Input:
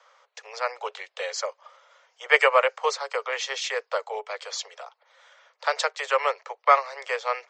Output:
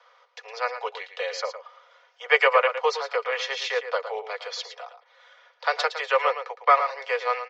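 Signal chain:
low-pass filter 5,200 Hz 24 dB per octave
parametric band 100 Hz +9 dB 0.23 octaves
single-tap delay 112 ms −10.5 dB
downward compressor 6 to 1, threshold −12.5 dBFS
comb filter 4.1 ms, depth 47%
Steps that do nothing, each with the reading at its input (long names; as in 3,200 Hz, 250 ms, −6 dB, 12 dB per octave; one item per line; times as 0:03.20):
parametric band 100 Hz: nothing at its input below 380 Hz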